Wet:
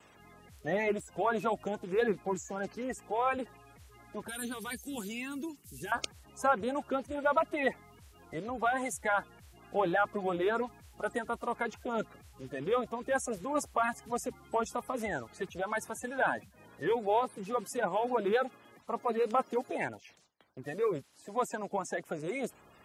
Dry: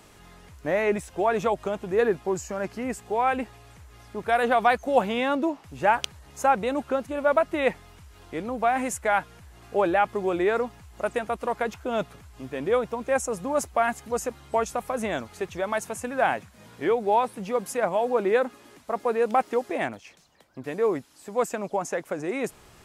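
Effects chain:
spectral magnitudes quantised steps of 30 dB
0:04.28–0:05.92: drawn EQ curve 140 Hz 0 dB, 410 Hz −5 dB, 590 Hz −25 dB, 10,000 Hz +14 dB
noise gate with hold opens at −49 dBFS
high-pass filter 55 Hz
level −6 dB

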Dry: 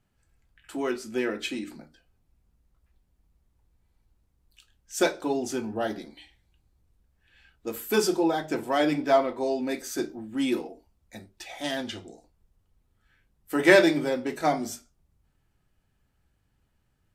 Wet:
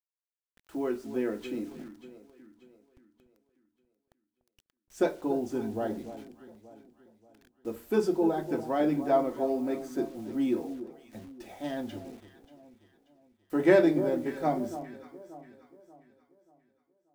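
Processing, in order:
tilt shelving filter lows +8.5 dB, about 1,400 Hz
bit reduction 8 bits
on a send: delay that swaps between a low-pass and a high-pass 292 ms, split 1,100 Hz, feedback 61%, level −11.5 dB
on the sum: level −9 dB

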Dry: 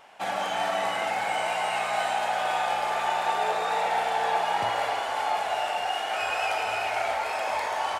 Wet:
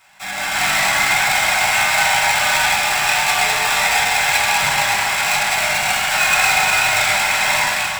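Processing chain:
each half-wave held at its own peak
drawn EQ curve 110 Hz 0 dB, 400 Hz −17 dB, 1,600 Hz 0 dB
automatic gain control gain up to 11.5 dB
delay that swaps between a low-pass and a high-pass 118 ms, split 2,400 Hz, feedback 72%, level −7.5 dB
convolution reverb RT60 0.65 s, pre-delay 3 ms, DRR −5 dB
level −5 dB

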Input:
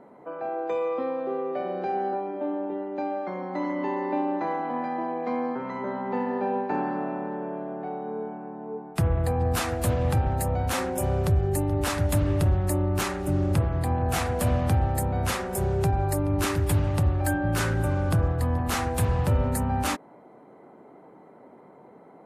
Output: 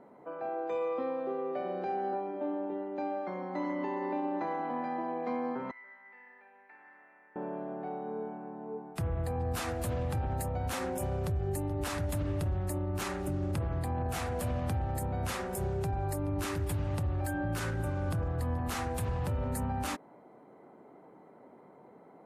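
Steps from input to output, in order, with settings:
brickwall limiter −20.5 dBFS, peak gain reduction 7 dB
0:05.71–0:07.36: resonant band-pass 2,000 Hz, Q 7.8
level −5 dB

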